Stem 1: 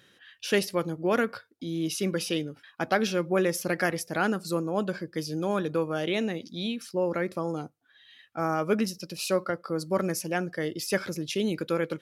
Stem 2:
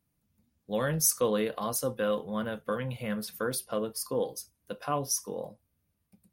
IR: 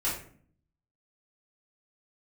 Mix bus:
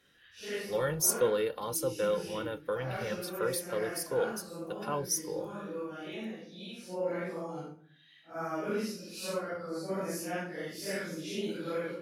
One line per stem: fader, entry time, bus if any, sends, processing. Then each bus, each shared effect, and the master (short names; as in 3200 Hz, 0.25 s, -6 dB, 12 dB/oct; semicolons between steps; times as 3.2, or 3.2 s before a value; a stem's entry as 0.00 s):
-8.5 dB, 0.00 s, send -12 dB, phase scrambler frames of 0.2 s; bell 86 Hz -12 dB 0.68 oct; auto duck -16 dB, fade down 0.30 s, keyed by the second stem
-4.0 dB, 0.00 s, no send, comb 2.2 ms, depth 70%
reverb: on, RT60 0.50 s, pre-delay 3 ms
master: dry